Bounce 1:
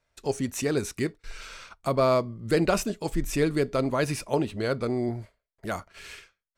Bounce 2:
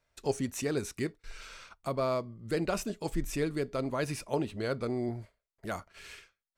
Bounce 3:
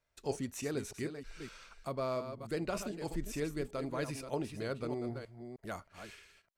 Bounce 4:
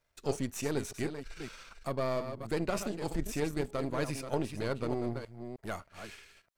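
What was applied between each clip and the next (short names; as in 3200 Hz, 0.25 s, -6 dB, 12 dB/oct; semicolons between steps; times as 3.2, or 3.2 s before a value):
vocal rider 0.5 s; gain -6 dB
reverse delay 0.309 s, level -8.5 dB; gain -5.5 dB
half-wave gain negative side -7 dB; gain +6 dB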